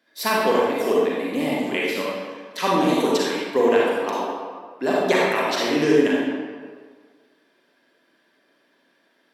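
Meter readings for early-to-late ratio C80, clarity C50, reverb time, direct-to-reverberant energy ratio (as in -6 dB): 0.0 dB, -3.0 dB, 1.7 s, -5.5 dB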